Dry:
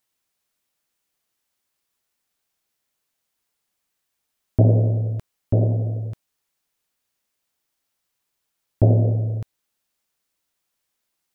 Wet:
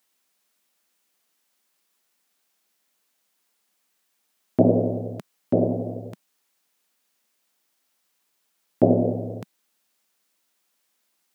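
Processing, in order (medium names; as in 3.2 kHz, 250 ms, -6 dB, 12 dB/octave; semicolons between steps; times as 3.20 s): Chebyshev high-pass 190 Hz, order 3; trim +5.5 dB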